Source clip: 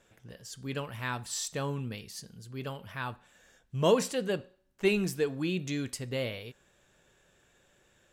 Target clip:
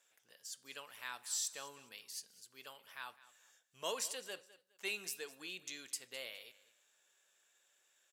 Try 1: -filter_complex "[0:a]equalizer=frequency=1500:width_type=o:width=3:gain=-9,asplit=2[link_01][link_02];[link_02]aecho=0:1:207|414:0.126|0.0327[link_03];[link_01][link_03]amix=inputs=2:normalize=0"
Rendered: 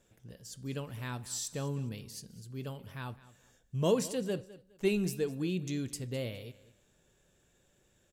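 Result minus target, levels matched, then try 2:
1,000 Hz band −3.5 dB
-filter_complex "[0:a]highpass=1100,equalizer=frequency=1500:width_type=o:width=3:gain=-9,asplit=2[link_01][link_02];[link_02]aecho=0:1:207|414:0.126|0.0327[link_03];[link_01][link_03]amix=inputs=2:normalize=0"

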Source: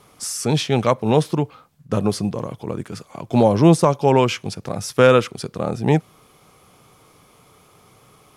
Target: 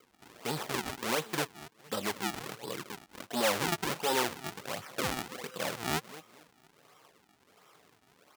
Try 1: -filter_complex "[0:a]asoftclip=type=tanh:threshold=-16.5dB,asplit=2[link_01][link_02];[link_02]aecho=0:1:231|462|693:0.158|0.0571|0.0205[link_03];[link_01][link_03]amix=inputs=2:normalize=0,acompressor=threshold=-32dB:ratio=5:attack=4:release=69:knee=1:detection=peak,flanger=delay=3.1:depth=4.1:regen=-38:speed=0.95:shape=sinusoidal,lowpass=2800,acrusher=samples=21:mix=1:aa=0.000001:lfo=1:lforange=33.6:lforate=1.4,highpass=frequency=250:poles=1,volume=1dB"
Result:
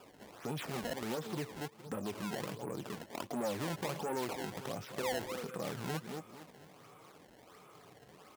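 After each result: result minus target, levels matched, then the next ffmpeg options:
downward compressor: peak gain reduction +13 dB; sample-and-hold swept by an LFO: distortion −7 dB; 250 Hz band +4.0 dB
-filter_complex "[0:a]asoftclip=type=tanh:threshold=-16.5dB,asplit=2[link_01][link_02];[link_02]aecho=0:1:231|462|693:0.158|0.0571|0.0205[link_03];[link_01][link_03]amix=inputs=2:normalize=0,flanger=delay=3.1:depth=4.1:regen=-38:speed=0.95:shape=sinusoidal,lowpass=2800,acrusher=samples=48:mix=1:aa=0.000001:lfo=1:lforange=76.8:lforate=1.4,highpass=frequency=250:poles=1,volume=1dB"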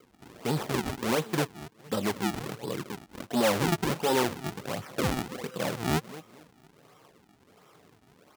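250 Hz band +4.5 dB
-filter_complex "[0:a]asoftclip=type=tanh:threshold=-16.5dB,asplit=2[link_01][link_02];[link_02]aecho=0:1:231|462|693:0.158|0.0571|0.0205[link_03];[link_01][link_03]amix=inputs=2:normalize=0,flanger=delay=3.1:depth=4.1:regen=-38:speed=0.95:shape=sinusoidal,lowpass=2800,acrusher=samples=48:mix=1:aa=0.000001:lfo=1:lforange=76.8:lforate=1.4,highpass=frequency=900:poles=1,volume=1dB"

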